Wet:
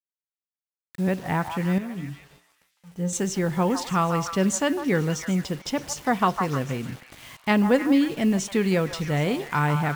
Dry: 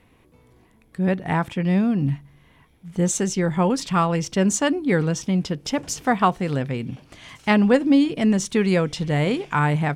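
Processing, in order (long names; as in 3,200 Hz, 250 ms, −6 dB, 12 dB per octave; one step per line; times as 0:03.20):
on a send at −21.5 dB: EQ curve with evenly spaced ripples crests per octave 1.4, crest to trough 8 dB + convolution reverb RT60 0.80 s, pre-delay 9 ms
on the sum: bit reduction 7 bits
0:01.78–0:03.13: tuned comb filter 59 Hz, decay 0.31 s, harmonics odd, mix 80%
echo through a band-pass that steps 154 ms, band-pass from 1,000 Hz, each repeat 0.7 octaves, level −5 dB
level −3 dB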